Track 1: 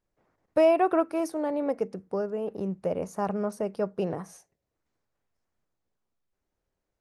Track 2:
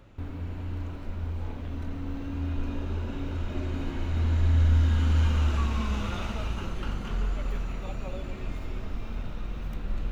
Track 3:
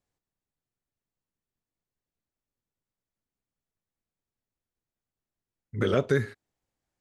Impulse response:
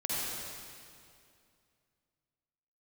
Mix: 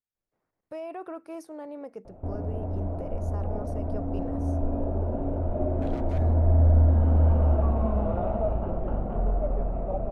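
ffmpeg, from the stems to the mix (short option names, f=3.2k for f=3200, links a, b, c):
-filter_complex "[0:a]alimiter=limit=-20dB:level=0:latency=1:release=12,adelay=150,volume=-10.5dB[a];[1:a]lowpass=f=660:t=q:w=5.5,adelay=2050,volume=2.5dB[b];[2:a]aeval=exprs='0.0794*(abs(mod(val(0)/0.0794+3,4)-2)-1)':c=same,volume=-18dB[c];[a][b][c]amix=inputs=3:normalize=0"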